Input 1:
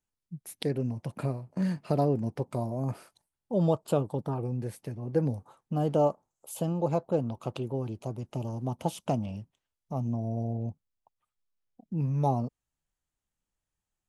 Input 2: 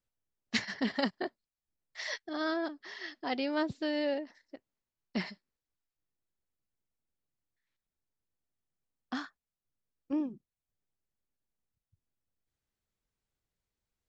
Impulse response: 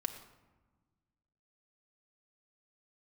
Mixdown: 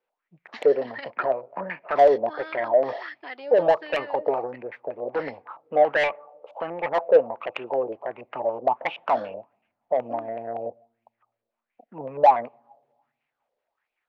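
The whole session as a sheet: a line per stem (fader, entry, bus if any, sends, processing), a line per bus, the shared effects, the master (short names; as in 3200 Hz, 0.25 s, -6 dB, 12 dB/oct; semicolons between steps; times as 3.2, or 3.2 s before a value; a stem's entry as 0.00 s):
-1.0 dB, 0.00 s, send -21.5 dB, bell 1000 Hz +8.5 dB 1.5 oct; LFO low-pass square 5.3 Hz 620–2400 Hz
+1.5 dB, 0.00 s, no send, compressor 6:1, threshold -39 dBFS, peak gain reduction 13.5 dB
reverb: on, RT60 1.3 s, pre-delay 4 ms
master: three-band isolator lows -22 dB, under 310 Hz, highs -24 dB, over 4500 Hz; soft clip -21.5 dBFS, distortion -7 dB; LFO bell 1.4 Hz 460–2500 Hz +15 dB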